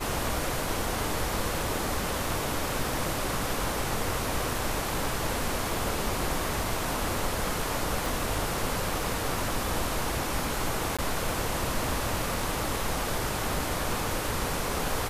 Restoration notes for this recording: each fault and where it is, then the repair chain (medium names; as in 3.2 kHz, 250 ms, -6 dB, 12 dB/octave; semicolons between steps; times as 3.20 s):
8.06 s: pop
10.97–10.99 s: dropout 16 ms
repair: de-click; interpolate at 10.97 s, 16 ms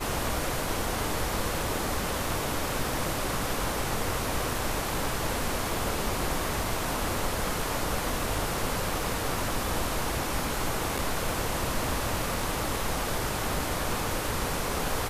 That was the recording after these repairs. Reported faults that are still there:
8.06 s: pop